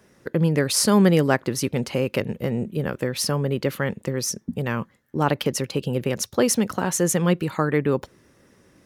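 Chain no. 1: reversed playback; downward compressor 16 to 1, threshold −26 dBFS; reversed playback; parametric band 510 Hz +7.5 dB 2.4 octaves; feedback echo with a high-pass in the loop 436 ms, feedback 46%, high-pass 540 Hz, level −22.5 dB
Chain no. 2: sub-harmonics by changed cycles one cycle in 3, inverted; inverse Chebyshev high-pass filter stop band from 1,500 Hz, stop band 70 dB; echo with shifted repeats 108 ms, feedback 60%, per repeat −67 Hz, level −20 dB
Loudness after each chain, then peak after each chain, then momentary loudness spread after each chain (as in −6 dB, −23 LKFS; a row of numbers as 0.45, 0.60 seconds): −27.0, −32.0 LKFS; −9.0, −10.0 dBFS; 3, 16 LU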